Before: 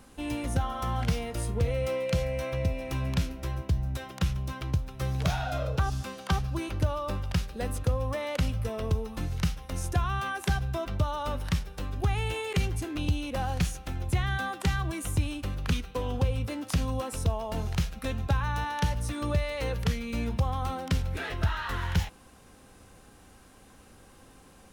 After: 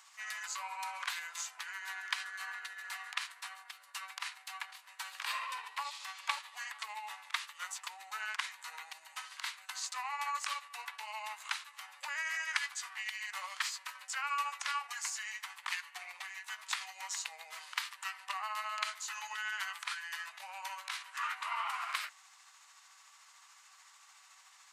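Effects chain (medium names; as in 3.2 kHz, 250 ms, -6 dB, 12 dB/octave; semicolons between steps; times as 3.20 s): rotating-head pitch shifter -5.5 st; steep high-pass 990 Hz 36 dB/octave; trim +2.5 dB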